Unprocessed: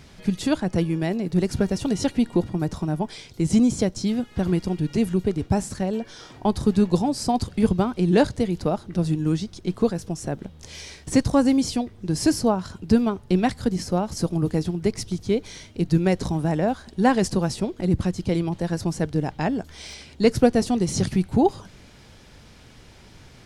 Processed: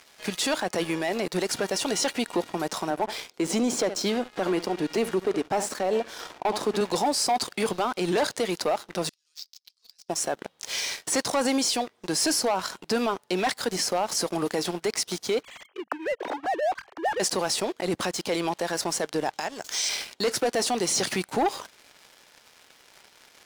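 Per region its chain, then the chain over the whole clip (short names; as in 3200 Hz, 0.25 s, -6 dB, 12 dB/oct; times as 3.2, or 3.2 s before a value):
2.9–6.81 HPF 250 Hz + tilt -2.5 dB/oct + echo 70 ms -18 dB
9.09–10.09 G.711 law mismatch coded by A + ladder band-pass 5400 Hz, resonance 65% + high shelf 6000 Hz -4 dB
15.43–17.2 sine-wave speech + high shelf 2100 Hz -6.5 dB + compressor 5:1, threshold -33 dBFS
19.33–19.89 bell 6600 Hz +13.5 dB 1 oct + compressor 16:1, threshold -31 dBFS
whole clip: HPF 620 Hz 12 dB/oct; sample leveller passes 3; limiter -18 dBFS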